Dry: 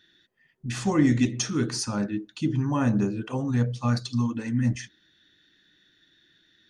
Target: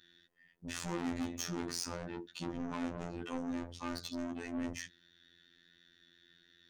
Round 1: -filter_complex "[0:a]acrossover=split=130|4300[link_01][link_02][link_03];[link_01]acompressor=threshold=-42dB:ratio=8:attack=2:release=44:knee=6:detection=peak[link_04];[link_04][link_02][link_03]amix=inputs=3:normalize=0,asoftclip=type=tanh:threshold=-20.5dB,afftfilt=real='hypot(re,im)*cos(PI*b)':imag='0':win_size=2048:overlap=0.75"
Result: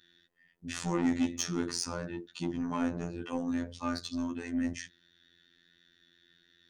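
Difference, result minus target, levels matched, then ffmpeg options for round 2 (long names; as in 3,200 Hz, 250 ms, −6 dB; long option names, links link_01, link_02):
soft clipping: distortion −8 dB
-filter_complex "[0:a]acrossover=split=130|4300[link_01][link_02][link_03];[link_01]acompressor=threshold=-42dB:ratio=8:attack=2:release=44:knee=6:detection=peak[link_04];[link_04][link_02][link_03]amix=inputs=3:normalize=0,asoftclip=type=tanh:threshold=-32dB,afftfilt=real='hypot(re,im)*cos(PI*b)':imag='0':win_size=2048:overlap=0.75"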